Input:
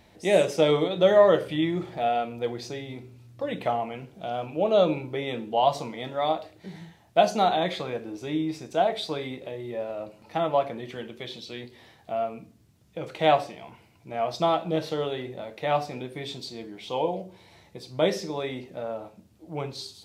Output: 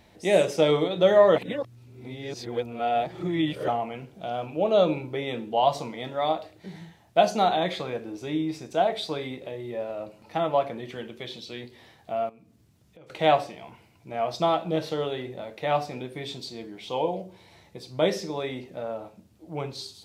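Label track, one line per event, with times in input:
1.360000	3.680000	reverse
12.290000	13.100000	downward compressor 2.5 to 1, threshold −56 dBFS

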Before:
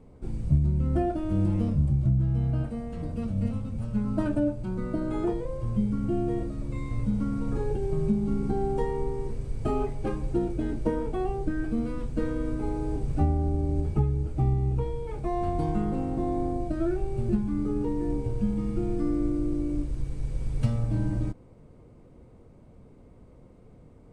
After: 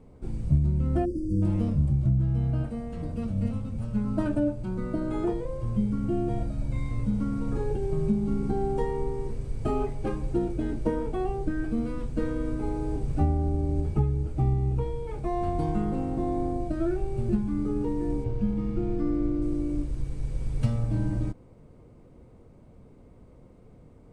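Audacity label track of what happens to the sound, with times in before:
1.050000	1.420000	time-frequency box erased 570–4,500 Hz
6.290000	6.910000	comb filter 1.3 ms
18.240000	19.420000	Bessel low-pass filter 4,300 Hz

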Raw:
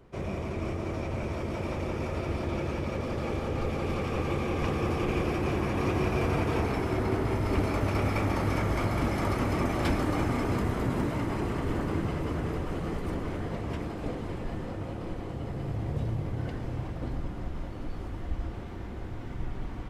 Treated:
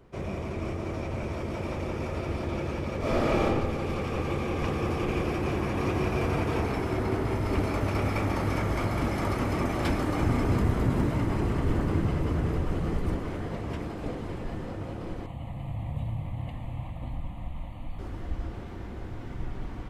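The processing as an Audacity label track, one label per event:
2.980000	3.450000	thrown reverb, RT60 1 s, DRR −8 dB
10.220000	13.160000	low-shelf EQ 180 Hz +7 dB
15.260000	17.990000	phaser with its sweep stopped centre 1,500 Hz, stages 6

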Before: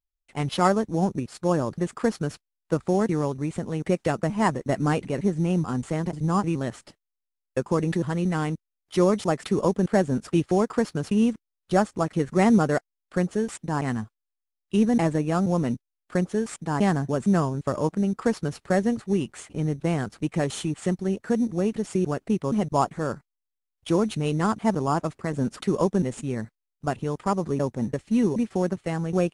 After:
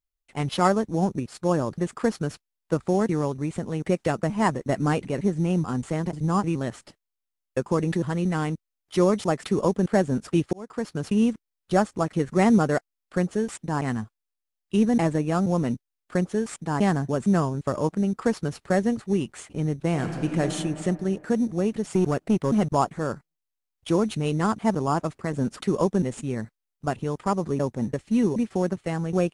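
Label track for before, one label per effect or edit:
10.530000	11.070000	fade in
19.890000	20.410000	thrown reverb, RT60 2.5 s, DRR 3 dB
21.940000	22.750000	leveller curve on the samples passes 1

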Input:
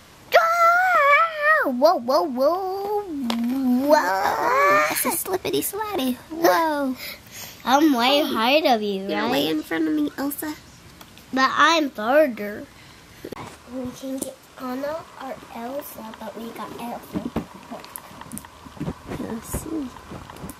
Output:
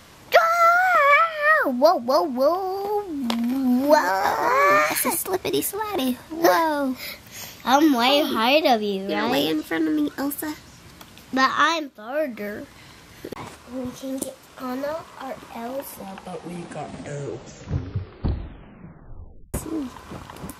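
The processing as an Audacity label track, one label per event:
11.500000	12.510000	duck −12 dB, fades 0.39 s
15.610000	15.610000	tape stop 3.93 s

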